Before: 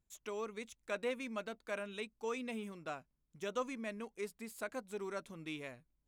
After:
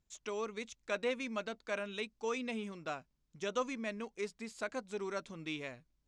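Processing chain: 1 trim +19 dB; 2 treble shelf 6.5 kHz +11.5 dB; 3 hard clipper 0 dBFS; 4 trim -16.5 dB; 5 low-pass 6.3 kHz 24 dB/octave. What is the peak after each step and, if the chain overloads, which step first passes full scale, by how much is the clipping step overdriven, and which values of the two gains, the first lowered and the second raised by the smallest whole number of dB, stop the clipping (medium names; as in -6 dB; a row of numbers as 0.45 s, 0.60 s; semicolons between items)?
-7.0 dBFS, -5.0 dBFS, -5.0 dBFS, -21.5 dBFS, -21.5 dBFS; nothing clips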